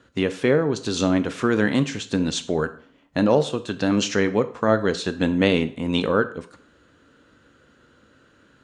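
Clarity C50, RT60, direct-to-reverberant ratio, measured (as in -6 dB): 15.5 dB, 0.50 s, 10.5 dB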